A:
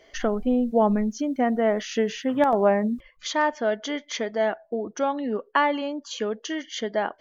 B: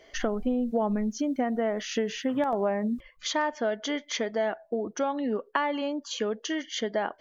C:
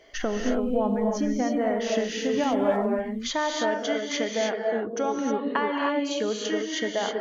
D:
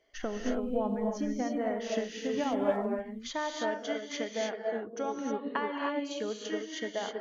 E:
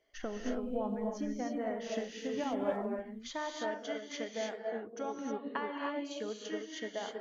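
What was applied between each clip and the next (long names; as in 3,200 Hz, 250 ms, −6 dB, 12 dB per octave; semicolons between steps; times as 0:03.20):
downward compressor 4 to 1, threshold −24 dBFS, peak gain reduction 8.5 dB
reverb whose tail is shaped and stops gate 340 ms rising, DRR 0 dB
expander for the loud parts 1.5 to 1, over −43 dBFS; level −4 dB
flanger 0.79 Hz, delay 0.1 ms, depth 9 ms, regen −85%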